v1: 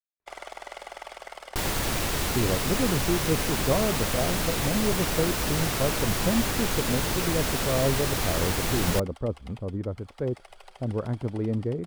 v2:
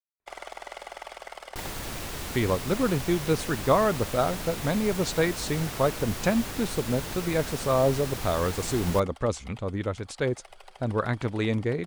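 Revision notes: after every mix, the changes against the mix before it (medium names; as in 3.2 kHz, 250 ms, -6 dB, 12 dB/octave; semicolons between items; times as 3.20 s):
speech: remove Bessel low-pass 510 Hz, order 2; second sound -8.0 dB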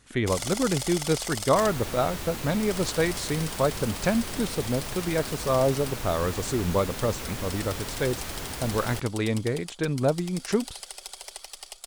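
speech: entry -2.20 s; first sound: remove three-band isolator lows -16 dB, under 350 Hz, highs -22 dB, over 2.4 kHz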